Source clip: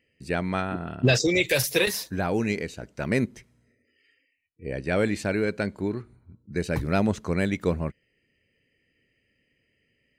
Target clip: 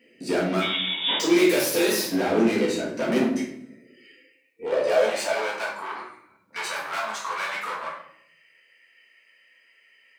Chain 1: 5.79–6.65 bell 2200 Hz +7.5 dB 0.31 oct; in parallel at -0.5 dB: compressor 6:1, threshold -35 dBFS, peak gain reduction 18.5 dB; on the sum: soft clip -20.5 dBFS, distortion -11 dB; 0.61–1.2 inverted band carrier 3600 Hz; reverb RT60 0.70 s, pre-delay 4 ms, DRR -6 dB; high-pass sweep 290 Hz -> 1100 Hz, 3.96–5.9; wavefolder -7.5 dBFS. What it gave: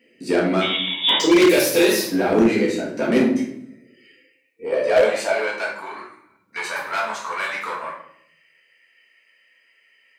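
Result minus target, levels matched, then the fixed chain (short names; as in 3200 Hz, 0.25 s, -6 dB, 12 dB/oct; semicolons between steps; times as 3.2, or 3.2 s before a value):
compressor: peak gain reduction +6.5 dB; soft clip: distortion -6 dB
5.79–6.65 bell 2200 Hz +7.5 dB 0.31 oct; in parallel at -0.5 dB: compressor 6:1, threshold -27 dBFS, peak gain reduction 11.5 dB; on the sum: soft clip -29 dBFS, distortion -4 dB; 0.61–1.2 inverted band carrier 3600 Hz; reverb RT60 0.70 s, pre-delay 4 ms, DRR -6 dB; high-pass sweep 290 Hz -> 1100 Hz, 3.96–5.9; wavefolder -7.5 dBFS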